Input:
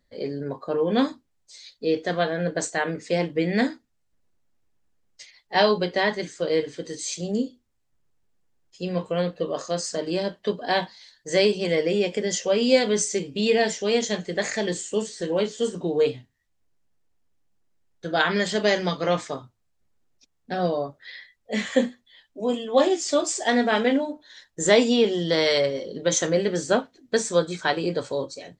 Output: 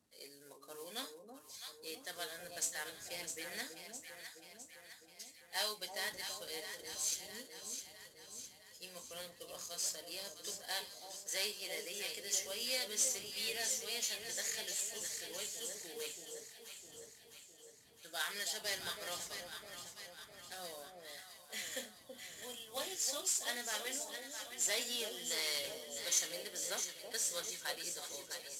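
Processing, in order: CVSD coder 64 kbps; wind noise 140 Hz -34 dBFS; differentiator; echo whose repeats swap between lows and highs 329 ms, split 810 Hz, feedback 75%, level -5 dB; trim -4 dB

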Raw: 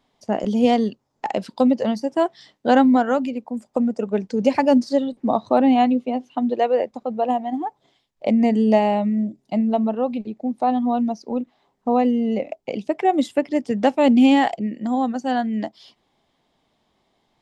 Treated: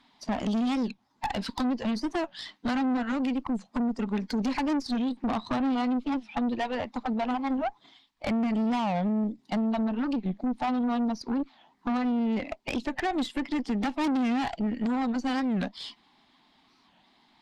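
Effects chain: coarse spectral quantiser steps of 15 dB; graphic EQ 125/250/500/1000/2000/4000 Hz -4/+11/-10/+11/+7/+11 dB; compression 3:1, threshold -21 dBFS, peak gain reduction 13.5 dB; valve stage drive 24 dB, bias 0.5; warped record 45 rpm, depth 250 cents

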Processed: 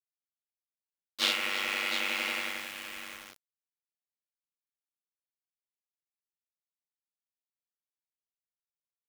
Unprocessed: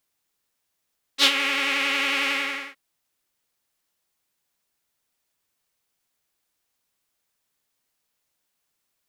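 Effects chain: on a send: multi-tap echo 52/331/711 ms -3/-15/-8.5 dB; on the sum: ring modulator 49 Hz; bit crusher 6-bit; trim -7 dB

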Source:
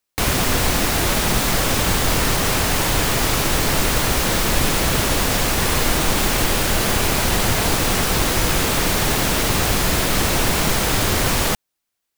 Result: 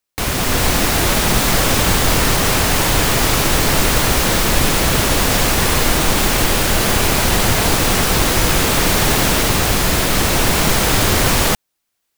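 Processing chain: level rider; trim -1 dB

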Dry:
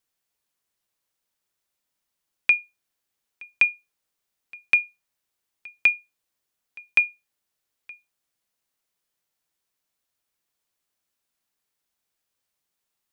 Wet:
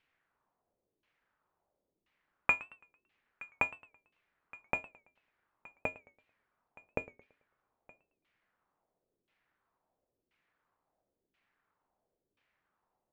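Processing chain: square wave that keeps the level; LFO low-pass saw down 0.97 Hz 330–2700 Hz; modulated delay 111 ms, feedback 38%, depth 155 cents, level -20.5 dB

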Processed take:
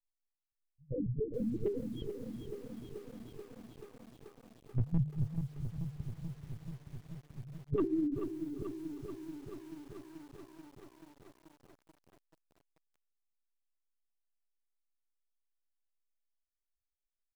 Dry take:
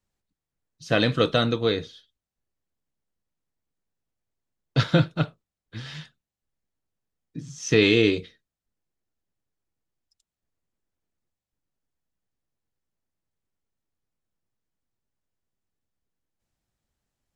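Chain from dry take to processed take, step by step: high-order bell 1.3 kHz -14.5 dB 1 oct; hum notches 50/100/150/200/250/300 Hz; rotary cabinet horn 7.5 Hz; loudest bins only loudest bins 1; formant shift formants -3 st; wavefolder -26.5 dBFS; distance through air 53 m; feedback delay 394 ms, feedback 47%, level -13 dB; LPC vocoder at 8 kHz pitch kept; bit-crushed delay 434 ms, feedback 80%, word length 10-bit, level -8.5 dB; trim +3 dB

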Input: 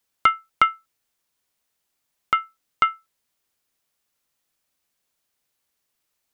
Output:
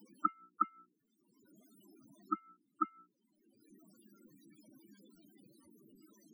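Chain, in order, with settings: hum notches 60/120/180/240/300/360/420/480 Hz; in parallel at -2 dB: upward compressor, threshold -22 dBFS; on the sum: inverted gate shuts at -10 dBFS, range -34 dB; small resonant body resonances 210/300 Hz, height 10 dB, ringing for 30 ms; loudest bins only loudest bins 8; trim -2.5 dB

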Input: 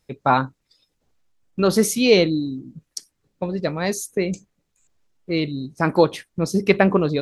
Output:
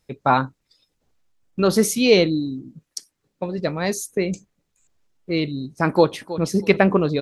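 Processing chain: 2.68–3.58 s: bass shelf 120 Hz -8.5 dB; 5.89–6.45 s: echo throw 320 ms, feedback 20%, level -14.5 dB

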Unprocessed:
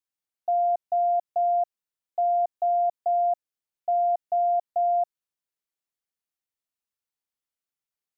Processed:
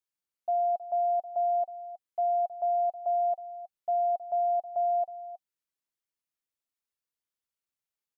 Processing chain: band-stop 750 Hz, Q 12; delay 318 ms -14.5 dB; trim -2.5 dB

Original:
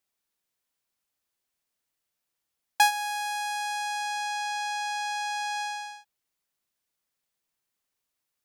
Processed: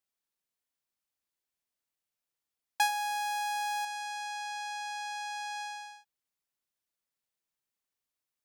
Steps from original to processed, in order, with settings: 2.89–3.85 s: waveshaping leveller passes 2; trim -7 dB

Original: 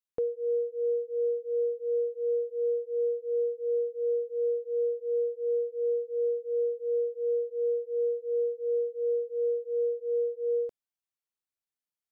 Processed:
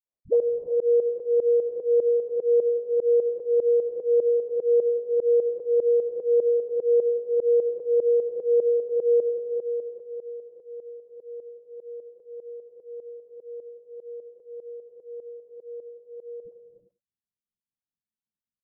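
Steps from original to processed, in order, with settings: peaking EQ 320 Hz -3.5 dB 1.3 oct; phase dispersion highs, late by 64 ms, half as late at 380 Hz; tempo 0.65×; low-pass sweep 550 Hz -> 220 Hz, 8.76–10.53 s; volume shaper 150 bpm, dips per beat 2, -17 dB, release 148 ms; delay 91 ms -19 dB; reverberation, pre-delay 3 ms, DRR 7 dB; trim +4 dB

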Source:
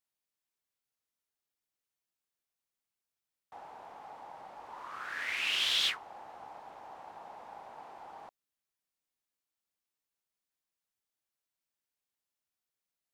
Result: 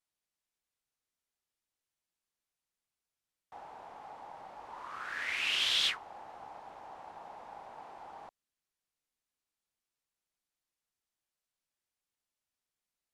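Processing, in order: low-pass 12 kHz 12 dB/octave; bass shelf 66 Hz +7 dB

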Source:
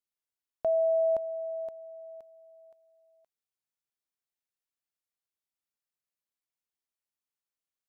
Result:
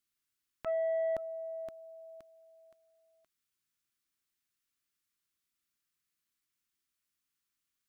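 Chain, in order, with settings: high-order bell 640 Hz -12.5 dB 1.3 oct; transformer saturation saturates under 890 Hz; trim +7 dB

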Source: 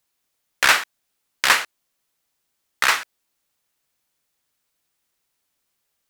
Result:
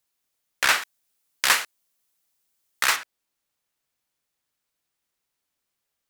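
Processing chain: treble shelf 5.3 kHz +2.5 dB, from 0.82 s +8 dB, from 2.96 s -2 dB; trim -5 dB

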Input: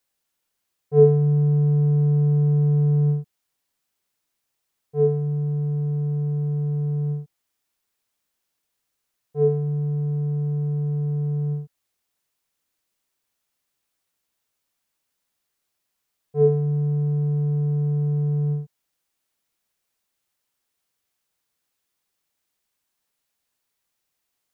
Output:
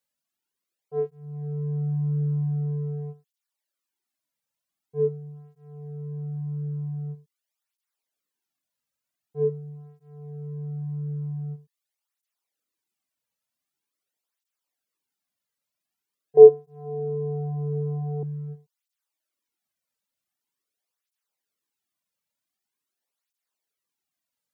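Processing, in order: 16.37–18.23 s: high-order bell 590 Hz +15.5 dB; reverb removal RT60 0.75 s; cancelling through-zero flanger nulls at 0.45 Hz, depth 2.9 ms; trim -3 dB

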